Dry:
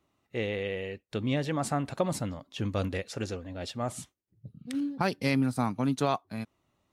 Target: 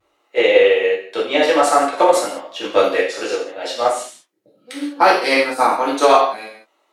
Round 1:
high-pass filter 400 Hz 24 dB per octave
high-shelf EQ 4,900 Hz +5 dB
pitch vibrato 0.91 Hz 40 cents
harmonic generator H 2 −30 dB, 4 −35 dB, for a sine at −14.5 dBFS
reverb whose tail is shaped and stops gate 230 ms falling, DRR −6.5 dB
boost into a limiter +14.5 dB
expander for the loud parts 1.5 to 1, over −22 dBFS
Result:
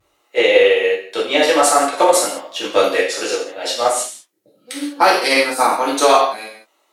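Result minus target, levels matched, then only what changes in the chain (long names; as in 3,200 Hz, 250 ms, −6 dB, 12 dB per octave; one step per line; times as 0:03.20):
8,000 Hz band +8.0 dB
change: high-shelf EQ 4,900 Hz −6 dB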